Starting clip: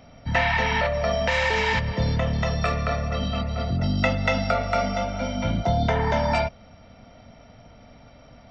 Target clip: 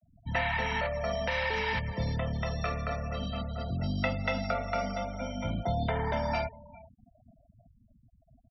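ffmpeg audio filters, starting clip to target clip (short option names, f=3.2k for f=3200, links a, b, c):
-af "aecho=1:1:404:0.1,afftfilt=real='re*gte(hypot(re,im),0.0224)':imag='im*gte(hypot(re,im),0.0224)':win_size=1024:overlap=0.75,volume=-8dB"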